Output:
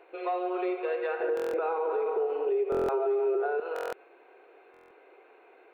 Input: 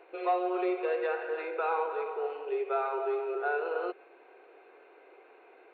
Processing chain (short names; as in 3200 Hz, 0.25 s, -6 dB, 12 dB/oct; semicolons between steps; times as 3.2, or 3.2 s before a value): 1.2–3.6 bell 310 Hz +13.5 dB 2.7 oct; compressor 3:1, threshold -24 dBFS, peak gain reduction 6.5 dB; limiter -21.5 dBFS, peak gain reduction 6 dB; stuck buffer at 1.35/2.7/3.74/4.72, samples 1024, times 7